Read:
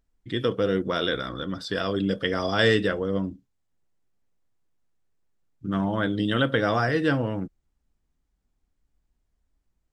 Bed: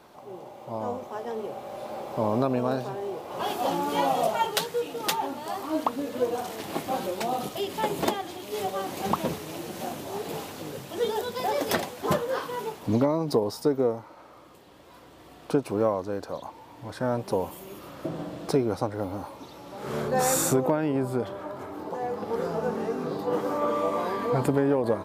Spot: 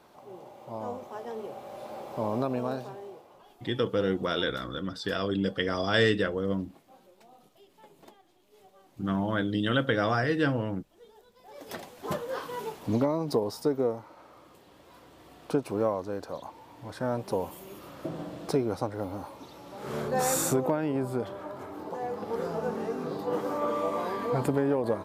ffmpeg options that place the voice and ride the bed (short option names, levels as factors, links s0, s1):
-filter_complex "[0:a]adelay=3350,volume=0.708[s0];[1:a]volume=10,afade=t=out:st=2.64:d=0.79:silence=0.0707946,afade=t=in:st=11.45:d=1.18:silence=0.0595662[s1];[s0][s1]amix=inputs=2:normalize=0"